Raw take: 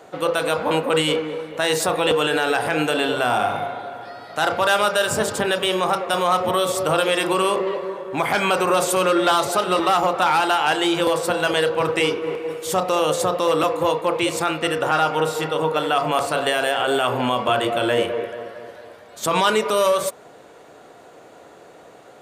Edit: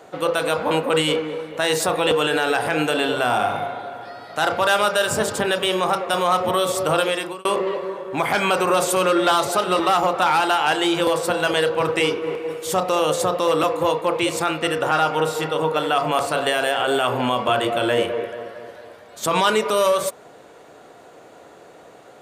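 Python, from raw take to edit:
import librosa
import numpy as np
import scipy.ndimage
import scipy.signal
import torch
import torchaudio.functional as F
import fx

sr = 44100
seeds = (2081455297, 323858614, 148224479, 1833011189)

y = fx.edit(x, sr, fx.fade_out_span(start_s=7.01, length_s=0.44), tone=tone)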